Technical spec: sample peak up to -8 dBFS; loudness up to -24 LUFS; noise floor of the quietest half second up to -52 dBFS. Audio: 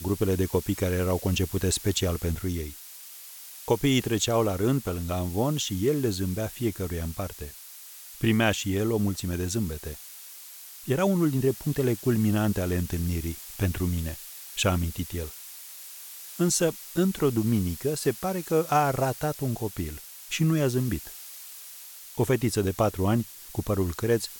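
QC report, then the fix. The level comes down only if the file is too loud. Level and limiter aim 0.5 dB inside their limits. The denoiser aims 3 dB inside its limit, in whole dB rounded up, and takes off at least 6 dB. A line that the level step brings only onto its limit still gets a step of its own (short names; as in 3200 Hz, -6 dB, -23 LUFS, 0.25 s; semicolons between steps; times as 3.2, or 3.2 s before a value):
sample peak -9.0 dBFS: OK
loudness -27.0 LUFS: OK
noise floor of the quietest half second -45 dBFS: fail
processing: denoiser 10 dB, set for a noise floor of -45 dBFS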